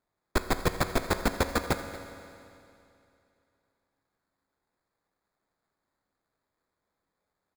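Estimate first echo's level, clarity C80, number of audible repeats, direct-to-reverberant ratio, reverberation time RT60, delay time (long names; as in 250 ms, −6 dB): −17.0 dB, 9.5 dB, 1, 8.0 dB, 2.7 s, 232 ms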